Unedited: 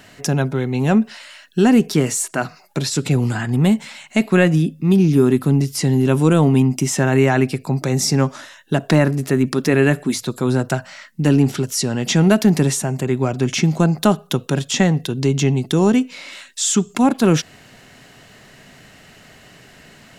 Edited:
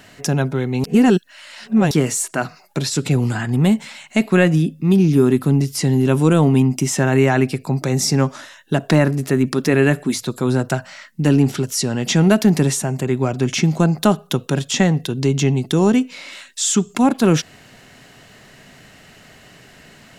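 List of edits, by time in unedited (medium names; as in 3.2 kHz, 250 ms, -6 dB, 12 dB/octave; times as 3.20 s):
0.84–1.91 s: reverse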